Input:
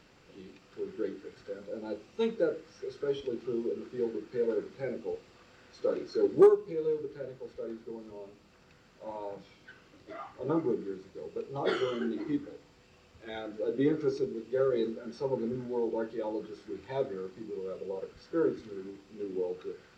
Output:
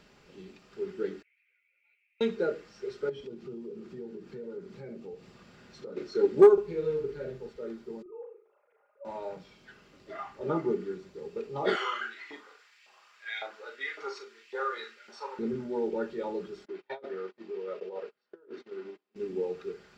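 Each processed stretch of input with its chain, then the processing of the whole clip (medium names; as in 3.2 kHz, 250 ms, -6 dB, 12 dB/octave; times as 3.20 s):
1.22–2.21 s: Butterworth band-pass 2.3 kHz, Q 5 + three-phase chorus
3.09–5.97 s: peaking EQ 150 Hz +9.5 dB 1.5 oct + compression 2.5:1, threshold -45 dBFS
6.53–7.49 s: bass shelf 120 Hz +10 dB + doubling 46 ms -6 dB
8.02–9.05 s: formants replaced by sine waves + low-pass 1.1 kHz + flutter echo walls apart 6.5 m, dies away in 0.41 s
11.75–15.39 s: LFO high-pass saw up 1.8 Hz 770–2400 Hz + doubling 40 ms -7 dB
16.65–19.16 s: gate -47 dBFS, range -27 dB + compressor with a negative ratio -37 dBFS, ratio -0.5 + band-pass 410–3700 Hz
whole clip: comb 4.9 ms, depth 39%; dynamic bell 1.9 kHz, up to +4 dB, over -48 dBFS, Q 0.83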